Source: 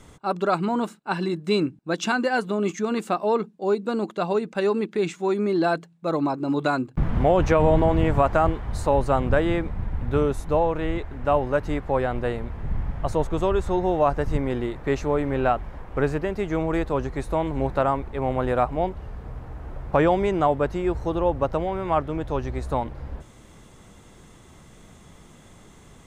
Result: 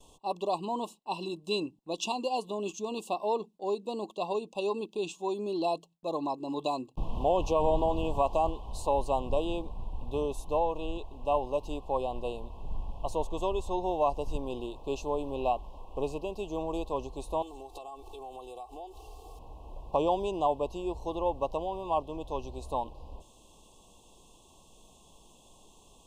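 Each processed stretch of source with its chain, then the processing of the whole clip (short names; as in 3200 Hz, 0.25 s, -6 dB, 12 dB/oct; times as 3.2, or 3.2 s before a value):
17.42–19.39 tone controls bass -8 dB, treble +12 dB + comb 2.6 ms, depth 92% + compressor 16:1, threshold -32 dBFS
whole clip: Chebyshev band-stop 1100–2600 Hz, order 5; gate with hold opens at -46 dBFS; bell 120 Hz -14.5 dB 2.7 oct; gain -3 dB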